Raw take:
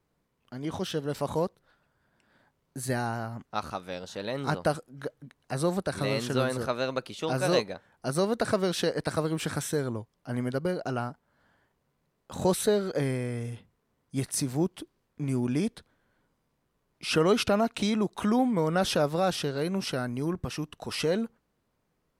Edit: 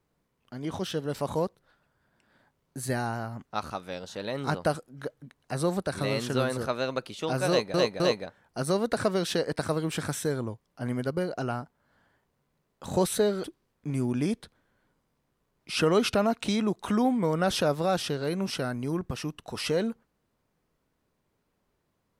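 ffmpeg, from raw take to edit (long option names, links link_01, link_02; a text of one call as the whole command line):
ffmpeg -i in.wav -filter_complex "[0:a]asplit=4[link_01][link_02][link_03][link_04];[link_01]atrim=end=7.742[link_05];[link_02]atrim=start=7.478:end=7.742[link_06];[link_03]atrim=start=7.478:end=12.922[link_07];[link_04]atrim=start=14.778[link_08];[link_05][link_06]acrossfade=duration=0.004:curve1=hsin:curve2=hsin[link_09];[link_09][link_07]acrossfade=duration=0.004:curve1=hsin:curve2=hsin[link_10];[link_10][link_08]acrossfade=duration=0.004:curve1=hsin:curve2=hsin" out.wav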